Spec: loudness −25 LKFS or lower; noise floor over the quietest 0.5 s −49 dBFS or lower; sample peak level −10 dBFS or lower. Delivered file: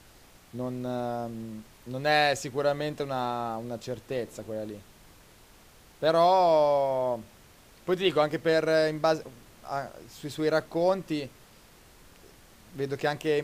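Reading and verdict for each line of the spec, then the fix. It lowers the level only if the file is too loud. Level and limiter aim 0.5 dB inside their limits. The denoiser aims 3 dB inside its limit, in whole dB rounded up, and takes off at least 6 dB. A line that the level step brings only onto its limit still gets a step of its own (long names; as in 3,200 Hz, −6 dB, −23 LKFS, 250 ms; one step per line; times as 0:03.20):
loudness −27.5 LKFS: in spec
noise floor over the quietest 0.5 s −55 dBFS: in spec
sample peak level −9.0 dBFS: out of spec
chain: brickwall limiter −10.5 dBFS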